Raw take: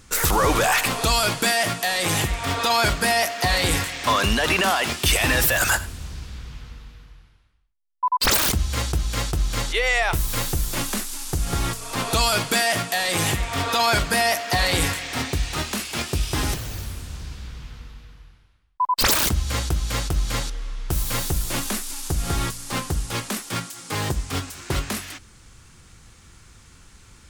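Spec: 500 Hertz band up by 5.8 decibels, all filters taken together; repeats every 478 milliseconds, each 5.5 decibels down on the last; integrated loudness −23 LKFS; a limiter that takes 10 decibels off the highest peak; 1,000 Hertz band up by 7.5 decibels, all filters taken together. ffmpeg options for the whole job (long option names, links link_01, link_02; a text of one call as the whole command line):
ffmpeg -i in.wav -af "equalizer=frequency=500:width_type=o:gain=4.5,equalizer=frequency=1000:width_type=o:gain=8,alimiter=limit=-13dB:level=0:latency=1,aecho=1:1:478|956|1434|1912|2390|2868|3346:0.531|0.281|0.149|0.079|0.0419|0.0222|0.0118,volume=-1dB" out.wav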